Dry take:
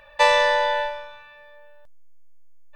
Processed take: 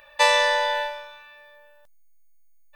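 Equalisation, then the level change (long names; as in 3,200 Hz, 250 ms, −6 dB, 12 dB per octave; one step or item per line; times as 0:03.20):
spectral tilt +1.5 dB per octave
high-shelf EQ 6,800 Hz +6 dB
−2.0 dB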